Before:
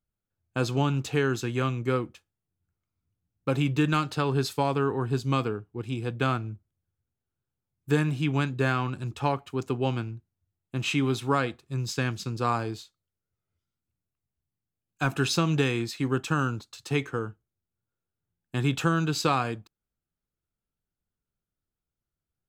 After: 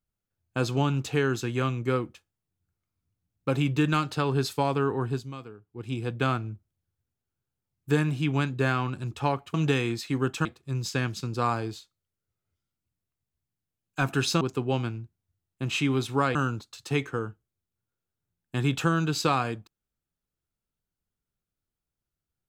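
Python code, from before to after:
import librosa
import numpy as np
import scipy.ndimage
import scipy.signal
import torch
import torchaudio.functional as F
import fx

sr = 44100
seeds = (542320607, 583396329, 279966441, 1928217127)

y = fx.edit(x, sr, fx.fade_down_up(start_s=5.06, length_s=0.86, db=-14.5, fade_s=0.26),
    fx.swap(start_s=9.54, length_s=1.94, other_s=15.44, other_length_s=0.91), tone=tone)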